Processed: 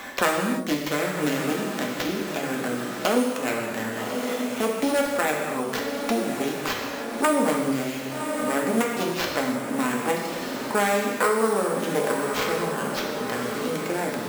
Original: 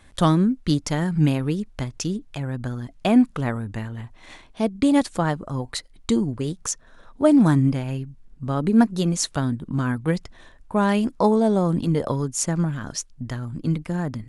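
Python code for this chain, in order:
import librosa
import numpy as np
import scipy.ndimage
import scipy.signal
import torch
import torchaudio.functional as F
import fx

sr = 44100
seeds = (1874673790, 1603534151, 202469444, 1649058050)

p1 = fx.self_delay(x, sr, depth_ms=0.69)
p2 = scipy.signal.sosfilt(scipy.signal.butter(2, 410.0, 'highpass', fs=sr, output='sos'), p1)
p3 = fx.high_shelf(p2, sr, hz=10000.0, db=-11.0)
p4 = fx.sample_hold(p3, sr, seeds[0], rate_hz=9500.0, jitter_pct=0)
p5 = p4 + fx.echo_diffused(p4, sr, ms=1182, feedback_pct=46, wet_db=-12, dry=0)
p6 = fx.rev_gated(p5, sr, seeds[1], gate_ms=340, shape='falling', drr_db=-1.0)
y = fx.band_squash(p6, sr, depth_pct=70)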